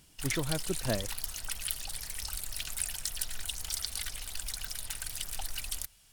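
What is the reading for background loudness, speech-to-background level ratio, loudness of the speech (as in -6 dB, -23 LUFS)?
-36.0 LUFS, 0.5 dB, -35.5 LUFS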